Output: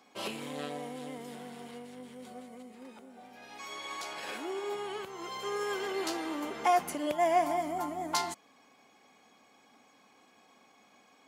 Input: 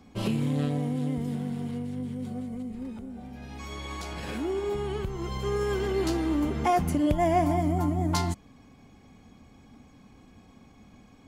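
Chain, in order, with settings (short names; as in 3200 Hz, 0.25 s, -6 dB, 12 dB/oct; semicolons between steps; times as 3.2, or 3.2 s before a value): HPF 560 Hz 12 dB/oct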